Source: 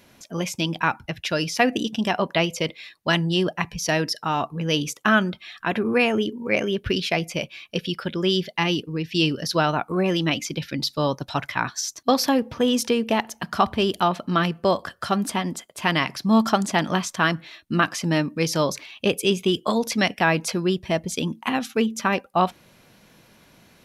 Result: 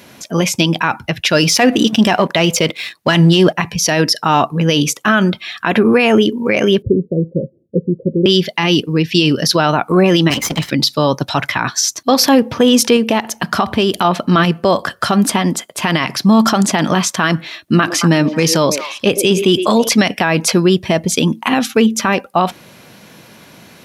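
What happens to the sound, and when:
1.33–3.57 s: waveshaping leveller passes 1
6.82–8.26 s: rippled Chebyshev low-pass 550 Hz, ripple 3 dB
10.30–10.70 s: comb filter that takes the minimum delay 0.97 ms
12.96–14.05 s: compression, threshold -22 dBFS
17.57–19.89 s: repeats whose band climbs or falls 110 ms, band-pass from 410 Hz, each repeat 1.4 oct, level -10.5 dB
whole clip: high-pass 97 Hz; loudness maximiser +14 dB; trim -1 dB

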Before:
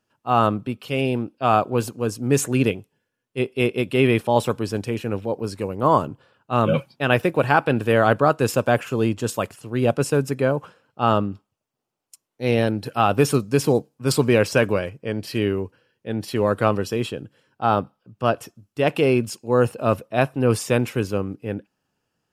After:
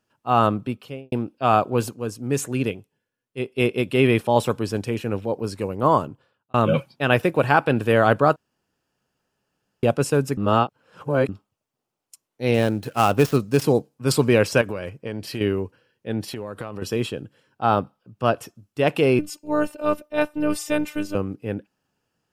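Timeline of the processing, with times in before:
0.69–1.12 s: studio fade out
1.94–3.58 s: gain -4.5 dB
5.86–6.54 s: fade out
8.36–9.83 s: room tone
10.37–11.29 s: reverse
12.54–13.62 s: dead-time distortion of 0.063 ms
14.61–15.41 s: compression, threshold -24 dBFS
16.31–16.82 s: compression 12:1, threshold -27 dBFS
19.19–21.15 s: robot voice 300 Hz

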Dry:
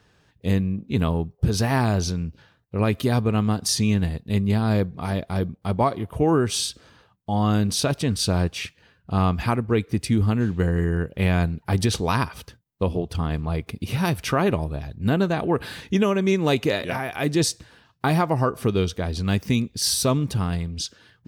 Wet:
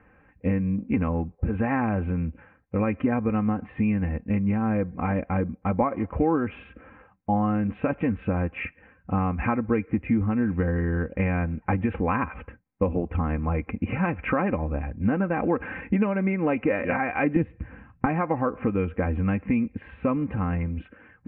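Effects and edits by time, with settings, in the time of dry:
17.36–18.06 s: tone controls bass +14 dB, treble +1 dB
whole clip: compression, threshold -23 dBFS; steep low-pass 2.5 kHz 72 dB/octave; comb 3.8 ms, depth 63%; trim +3 dB

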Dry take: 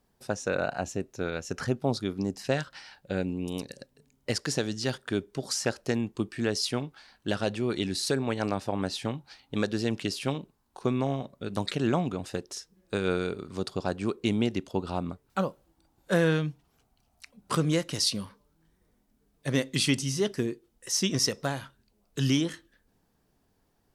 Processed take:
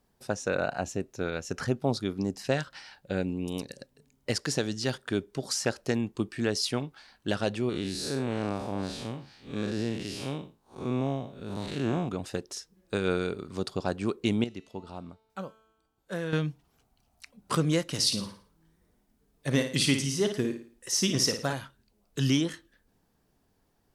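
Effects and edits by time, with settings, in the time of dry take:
7.69–12.09 s: spectral blur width 148 ms
14.44–16.33 s: feedback comb 220 Hz, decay 1.1 s, mix 70%
17.87–21.53 s: flutter echo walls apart 9.5 m, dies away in 0.43 s

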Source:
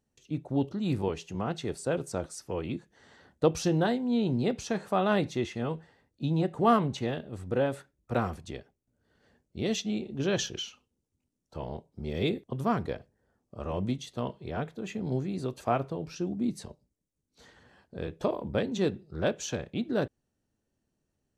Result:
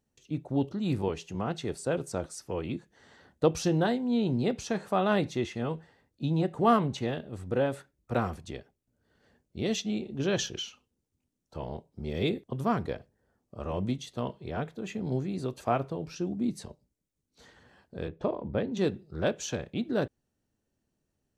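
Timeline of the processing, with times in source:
18.08–18.77 s: tape spacing loss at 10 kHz 22 dB

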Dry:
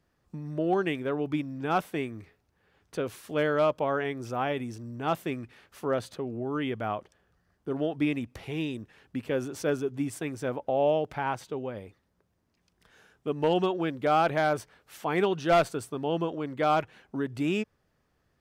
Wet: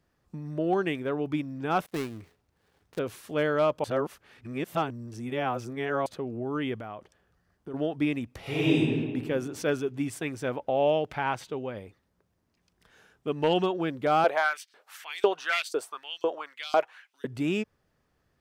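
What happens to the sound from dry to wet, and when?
1.86–2.99 s: dead-time distortion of 0.2 ms
3.84–6.06 s: reverse
6.78–7.74 s: compression 3:1, threshold -37 dBFS
8.41–8.81 s: reverb throw, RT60 1.7 s, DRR -10 dB
9.51–13.63 s: dynamic bell 2.7 kHz, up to +5 dB, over -47 dBFS, Q 0.74
14.24–17.25 s: LFO high-pass saw up 2 Hz 410–5300 Hz

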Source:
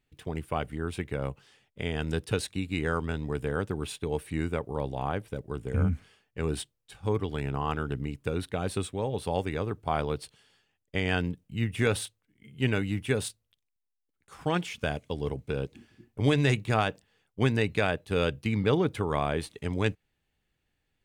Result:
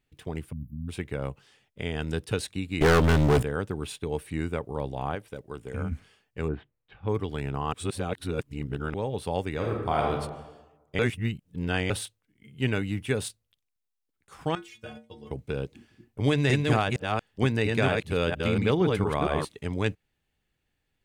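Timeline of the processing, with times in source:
0.52–0.89 s: spectral selection erased 300–11000 Hz
2.81–3.43 s: waveshaping leveller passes 5
5.15–5.92 s: bass shelf 280 Hz -8.5 dB
6.47–7.08 s: low-pass 1.7 kHz -> 3.3 kHz 24 dB/octave
7.73–8.94 s: reverse
9.53–10.11 s: reverb throw, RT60 1.1 s, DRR -0.5 dB
10.99–11.90 s: reverse
14.55–15.31 s: inharmonic resonator 110 Hz, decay 0.33 s, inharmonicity 0.008
16.27–19.45 s: chunks repeated in reverse 231 ms, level -2.5 dB

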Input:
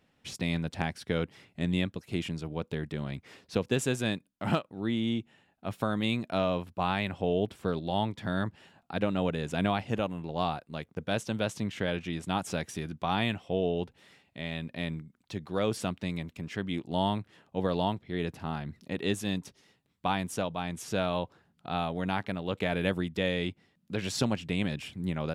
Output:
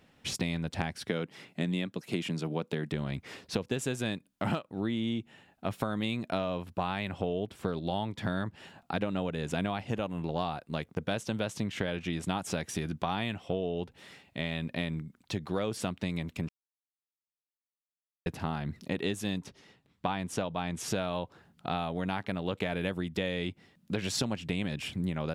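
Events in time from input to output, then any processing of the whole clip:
1.09–2.92 s: high-pass 140 Hz 24 dB/octave
16.49–18.26 s: mute
19.42–20.83 s: treble shelf 6 kHz -> 11 kHz -11.5 dB
whole clip: compression 6:1, threshold -35 dBFS; trim +6.5 dB

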